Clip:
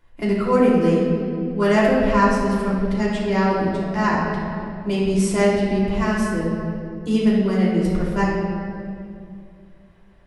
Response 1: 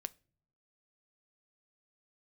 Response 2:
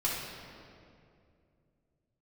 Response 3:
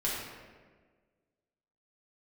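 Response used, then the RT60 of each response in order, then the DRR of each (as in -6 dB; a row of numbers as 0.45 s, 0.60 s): 2; no single decay rate, 2.5 s, 1.5 s; 14.5 dB, -7.0 dB, -7.0 dB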